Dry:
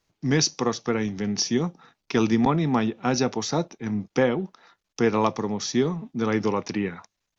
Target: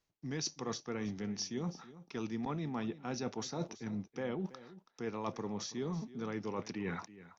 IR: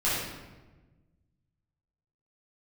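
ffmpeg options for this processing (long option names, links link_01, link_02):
-af "agate=range=-8dB:threshold=-44dB:ratio=16:detection=peak,areverse,acompressor=threshold=-36dB:ratio=8,areverse,aecho=1:1:328:0.15"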